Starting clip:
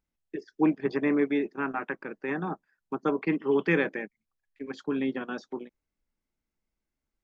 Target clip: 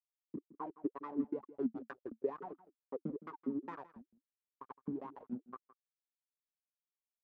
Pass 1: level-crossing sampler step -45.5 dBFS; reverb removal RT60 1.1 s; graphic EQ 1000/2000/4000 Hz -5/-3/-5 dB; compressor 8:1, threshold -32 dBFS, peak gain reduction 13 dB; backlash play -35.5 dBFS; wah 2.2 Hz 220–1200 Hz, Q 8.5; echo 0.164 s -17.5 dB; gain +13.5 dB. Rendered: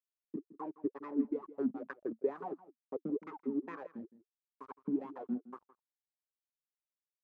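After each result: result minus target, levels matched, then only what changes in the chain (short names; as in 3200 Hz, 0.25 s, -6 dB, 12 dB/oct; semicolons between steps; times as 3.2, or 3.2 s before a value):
backlash: distortion -8 dB; level-crossing sampler: distortion +7 dB
change: backlash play -28.5 dBFS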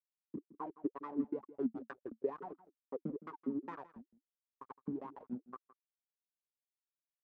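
level-crossing sampler: distortion +7 dB
change: level-crossing sampler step -52 dBFS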